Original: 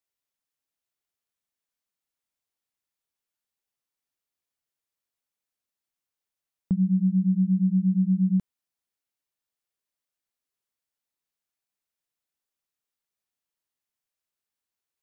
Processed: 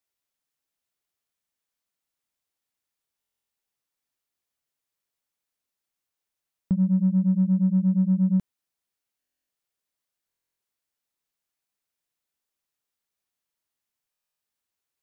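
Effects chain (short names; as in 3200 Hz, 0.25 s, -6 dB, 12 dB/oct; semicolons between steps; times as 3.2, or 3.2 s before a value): in parallel at -10 dB: soft clip -28 dBFS, distortion -9 dB; on the sum: stuck buffer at 3.19/9.19/10.28/14.11, samples 1024, times 12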